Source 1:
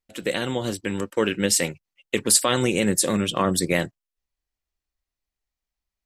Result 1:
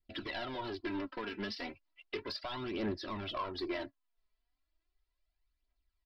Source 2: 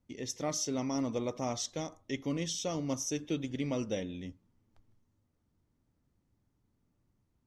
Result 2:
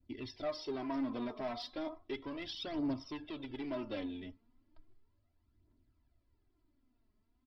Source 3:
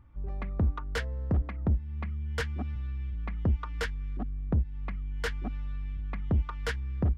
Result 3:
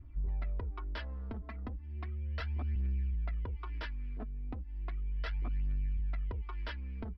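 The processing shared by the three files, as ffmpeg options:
-af "aecho=1:1:3:0.82,adynamicequalizer=threshold=0.00891:dfrequency=960:dqfactor=1.1:tfrequency=960:tqfactor=1.1:attack=5:release=100:ratio=0.375:range=4:mode=boostabove:tftype=bell,acompressor=threshold=-28dB:ratio=6,aresample=11025,asoftclip=type=tanh:threshold=-31.5dB,aresample=44100,aphaser=in_gain=1:out_gain=1:delay=4.8:decay=0.55:speed=0.35:type=triangular,volume=-4dB"

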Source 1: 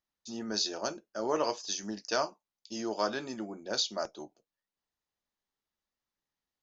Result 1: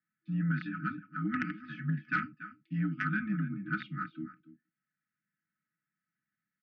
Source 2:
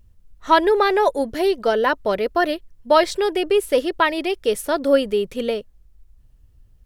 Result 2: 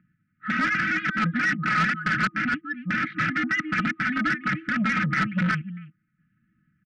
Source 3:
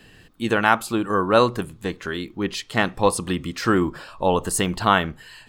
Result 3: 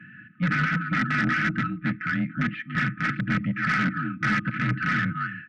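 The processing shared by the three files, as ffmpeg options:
-af "aecho=1:1:285:0.158,aeval=exprs='(mod(7.94*val(0)+1,2)-1)/7.94':c=same,afftfilt=real='re*(1-between(b*sr/4096,380,1300))':imag='im*(1-between(b*sr/4096,380,1300))':win_size=4096:overlap=0.75,aecho=1:1:4.5:0.69,highpass=f=210:t=q:w=0.5412,highpass=f=210:t=q:w=1.307,lowpass=f=2.1k:t=q:w=0.5176,lowpass=f=2.1k:t=q:w=0.7071,lowpass=f=2.1k:t=q:w=1.932,afreqshift=-57,asoftclip=type=tanh:threshold=-24dB,volume=7dB"

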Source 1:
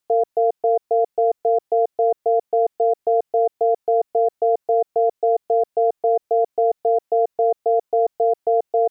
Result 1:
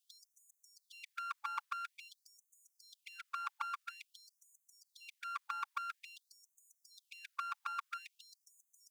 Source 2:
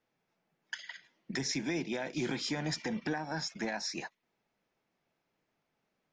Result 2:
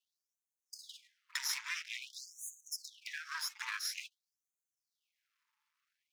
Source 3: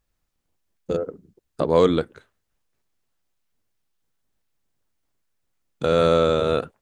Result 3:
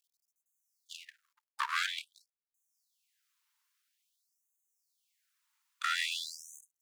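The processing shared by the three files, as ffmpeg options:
-af "afftfilt=real='re*lt(hypot(re,im),0.794)':imag='im*lt(hypot(re,im),0.794)':win_size=1024:overlap=0.75,lowshelf=f=76:g=9,aeval=exprs='max(val(0),0)':c=same,afftfilt=real='re*gte(b*sr/1024,820*pow(6200/820,0.5+0.5*sin(2*PI*0.49*pts/sr)))':imag='im*gte(b*sr/1024,820*pow(6200/820,0.5+0.5*sin(2*PI*0.49*pts/sr)))':win_size=1024:overlap=0.75,volume=4.5dB"

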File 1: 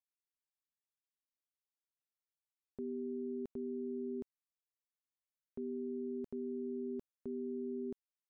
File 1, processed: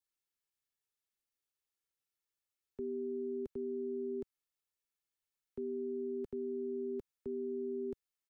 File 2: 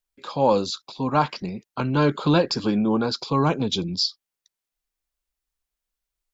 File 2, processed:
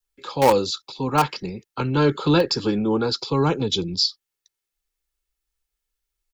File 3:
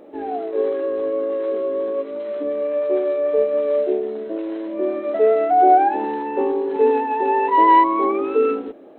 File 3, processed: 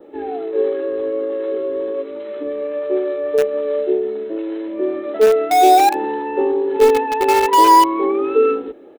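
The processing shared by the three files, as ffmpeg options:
-filter_complex "[0:a]adynamicequalizer=threshold=0.00282:dfrequency=2300:dqfactor=6.5:tfrequency=2300:tqfactor=6.5:attack=5:release=100:ratio=0.375:range=2:mode=cutabove:tftype=bell,aecho=1:1:2.3:0.4,acrossover=split=140|680|860[a][b][c][d];[c]acrusher=bits=3:mix=0:aa=0.000001[e];[a][b][e][d]amix=inputs=4:normalize=0,volume=2dB"

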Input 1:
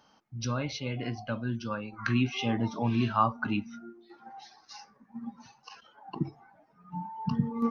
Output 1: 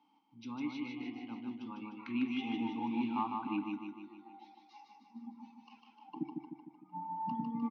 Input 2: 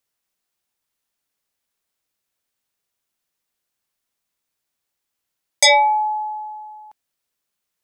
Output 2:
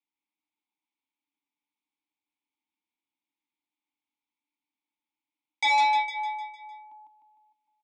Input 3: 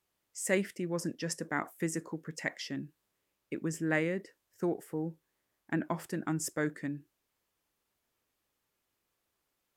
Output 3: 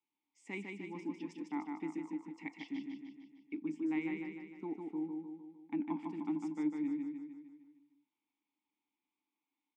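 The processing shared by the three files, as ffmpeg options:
-filter_complex "[0:a]asplit=3[a][b][c];[a]bandpass=f=300:t=q:w=8,volume=0dB[d];[b]bandpass=f=870:t=q:w=8,volume=-6dB[e];[c]bandpass=f=2.24k:t=q:w=8,volume=-9dB[f];[d][e][f]amix=inputs=3:normalize=0,asplit=2[g][h];[h]aecho=0:1:152|304|456|608|760|912|1064:0.631|0.341|0.184|0.0994|0.0537|0.029|0.0156[i];[g][i]amix=inputs=2:normalize=0,aeval=exprs='0.2*(cos(1*acos(clip(val(0)/0.2,-1,1)))-cos(1*PI/2))+0.0251*(cos(5*acos(clip(val(0)/0.2,-1,1)))-cos(5*PI/2))+0.00282*(cos(6*acos(clip(val(0)/0.2,-1,1)))-cos(6*PI/2))':c=same,highpass=f=120:w=0.5412,highpass=f=120:w=1.3066,equalizer=f=130:t=q:w=4:g=-6,equalizer=f=360:t=q:w=4:g=-6,equalizer=f=580:t=q:w=4:g=-5,equalizer=f=3.5k:t=q:w=4:g=8,lowpass=f=8.7k:w=0.5412,lowpass=f=8.7k:w=1.3066"

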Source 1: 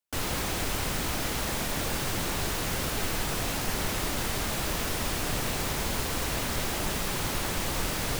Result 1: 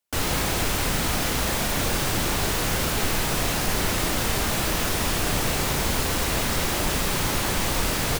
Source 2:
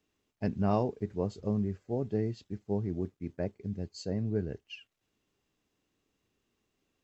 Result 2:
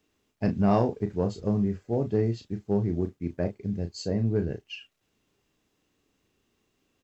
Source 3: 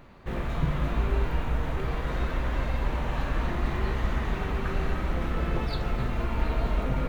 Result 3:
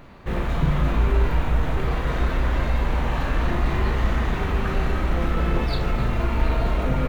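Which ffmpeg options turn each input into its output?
-filter_complex "[0:a]asplit=2[a][b];[b]volume=23.5dB,asoftclip=hard,volume=-23.5dB,volume=-8dB[c];[a][c]amix=inputs=2:normalize=0,asplit=2[d][e];[e]adelay=35,volume=-8.5dB[f];[d][f]amix=inputs=2:normalize=0,volume=2.5dB"

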